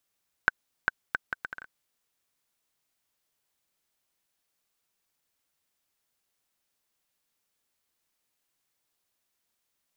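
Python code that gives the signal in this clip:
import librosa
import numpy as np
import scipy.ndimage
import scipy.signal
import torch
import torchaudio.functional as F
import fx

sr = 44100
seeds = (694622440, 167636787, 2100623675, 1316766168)

y = fx.bouncing_ball(sr, first_gap_s=0.4, ratio=0.67, hz=1530.0, decay_ms=21.0, level_db=-6.0)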